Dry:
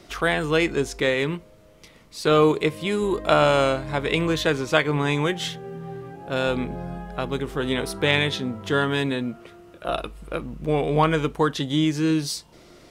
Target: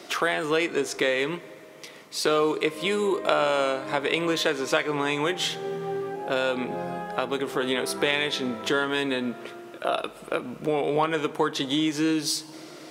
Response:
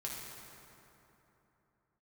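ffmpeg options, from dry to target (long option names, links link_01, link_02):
-filter_complex "[0:a]highpass=300,acompressor=threshold=-31dB:ratio=2.5,asplit=2[link_01][link_02];[1:a]atrim=start_sample=2205,adelay=25[link_03];[link_02][link_03]afir=irnorm=-1:irlink=0,volume=-16.5dB[link_04];[link_01][link_04]amix=inputs=2:normalize=0,volume=6.5dB"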